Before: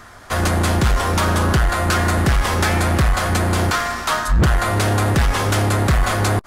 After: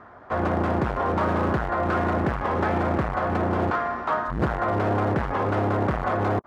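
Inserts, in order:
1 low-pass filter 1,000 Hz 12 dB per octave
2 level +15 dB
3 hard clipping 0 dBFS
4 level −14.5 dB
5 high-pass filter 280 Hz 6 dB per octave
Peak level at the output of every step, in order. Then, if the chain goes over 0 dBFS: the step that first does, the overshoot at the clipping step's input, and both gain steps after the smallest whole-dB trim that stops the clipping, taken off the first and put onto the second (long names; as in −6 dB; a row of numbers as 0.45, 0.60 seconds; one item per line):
−10.0, +5.0, 0.0, −14.5, −11.0 dBFS
step 2, 5.0 dB
step 2 +10 dB, step 4 −9.5 dB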